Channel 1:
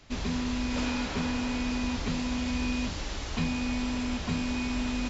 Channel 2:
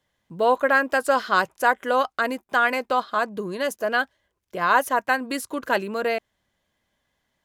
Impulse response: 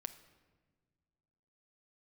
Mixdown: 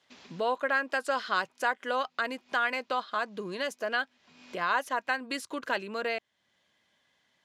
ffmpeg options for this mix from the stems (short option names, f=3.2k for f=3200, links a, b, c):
-filter_complex "[0:a]alimiter=level_in=2dB:limit=-24dB:level=0:latency=1:release=487,volume=-2dB,aeval=exprs='sgn(val(0))*max(abs(val(0))-0.00126,0)':c=same,aemphasis=mode=production:type=riaa,volume=-11dB[a];[1:a]crystalizer=i=5.5:c=0,volume=-1dB,asplit=2[b][c];[c]apad=whole_len=224796[d];[a][d]sidechaincompress=threshold=-30dB:ratio=12:attack=9.7:release=390[e];[e][b]amix=inputs=2:normalize=0,highpass=130,lowpass=3.6k,acompressor=threshold=-44dB:ratio=1.5"